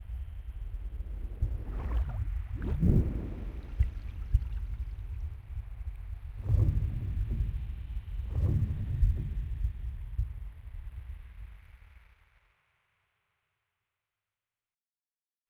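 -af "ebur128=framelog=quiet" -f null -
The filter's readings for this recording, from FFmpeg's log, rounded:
Integrated loudness:
  I:         -34.8 LUFS
  Threshold: -45.6 LUFS
Loudness range:
  LRA:        12.3 LU
  Threshold: -55.7 LUFS
  LRA low:   -45.6 LUFS
  LRA high:  -33.3 LUFS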